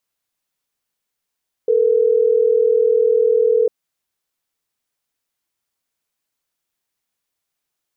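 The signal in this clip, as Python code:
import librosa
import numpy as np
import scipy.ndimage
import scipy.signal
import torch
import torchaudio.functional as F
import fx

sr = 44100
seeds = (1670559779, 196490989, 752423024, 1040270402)

y = fx.call_progress(sr, length_s=3.12, kind='ringback tone', level_db=-14.5)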